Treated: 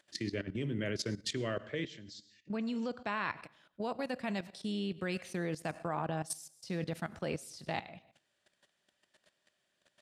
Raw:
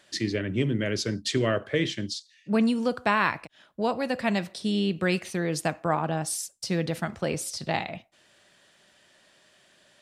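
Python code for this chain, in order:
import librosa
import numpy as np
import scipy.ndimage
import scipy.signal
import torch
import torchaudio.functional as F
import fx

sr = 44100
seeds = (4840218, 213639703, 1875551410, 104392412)

y = fx.ellip_lowpass(x, sr, hz=7600.0, order=4, stop_db=40, at=(1.33, 3.38))
y = fx.rev_plate(y, sr, seeds[0], rt60_s=0.56, hf_ratio=0.9, predelay_ms=80, drr_db=19.0)
y = fx.level_steps(y, sr, step_db=15)
y = F.gain(torch.from_numpy(y), -5.0).numpy()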